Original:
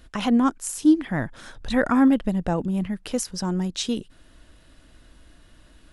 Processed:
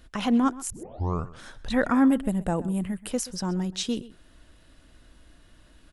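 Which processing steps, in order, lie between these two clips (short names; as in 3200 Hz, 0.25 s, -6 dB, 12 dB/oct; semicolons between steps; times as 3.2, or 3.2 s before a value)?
0.7 tape start 0.70 s; 2.09–3.11 resonant high shelf 6900 Hz +7 dB, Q 3; outdoor echo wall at 22 m, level -18 dB; gain -2.5 dB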